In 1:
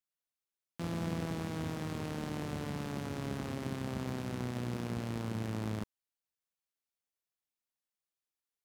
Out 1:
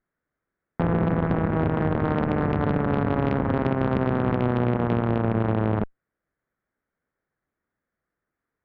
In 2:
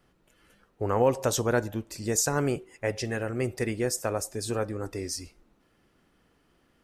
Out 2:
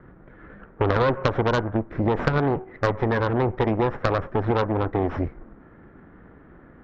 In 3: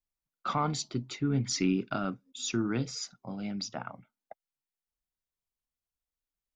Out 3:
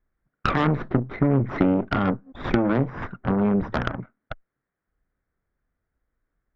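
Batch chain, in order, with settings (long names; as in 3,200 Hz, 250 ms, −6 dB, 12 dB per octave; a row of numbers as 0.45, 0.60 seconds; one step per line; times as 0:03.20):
lower of the sound and its delayed copy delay 0.54 ms
low-pass filter 1,600 Hz 24 dB per octave
downward compressor 4 to 1, threshold −41 dBFS
harmonic generator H 4 −12 dB, 6 −11 dB, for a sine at −27.5 dBFS
loudness normalisation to −24 LKFS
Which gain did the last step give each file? +21.0, +19.5, +21.0 decibels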